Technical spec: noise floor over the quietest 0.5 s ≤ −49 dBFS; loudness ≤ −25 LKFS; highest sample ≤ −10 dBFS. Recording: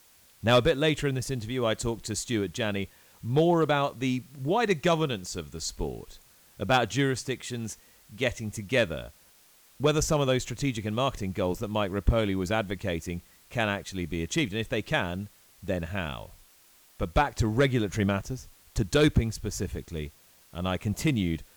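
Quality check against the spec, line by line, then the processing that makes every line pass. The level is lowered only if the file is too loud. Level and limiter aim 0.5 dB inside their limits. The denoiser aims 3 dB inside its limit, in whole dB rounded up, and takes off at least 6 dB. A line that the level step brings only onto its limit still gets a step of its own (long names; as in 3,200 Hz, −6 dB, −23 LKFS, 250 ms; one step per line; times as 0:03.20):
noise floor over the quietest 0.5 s −59 dBFS: in spec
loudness −28.5 LKFS: in spec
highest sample −13.0 dBFS: in spec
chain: no processing needed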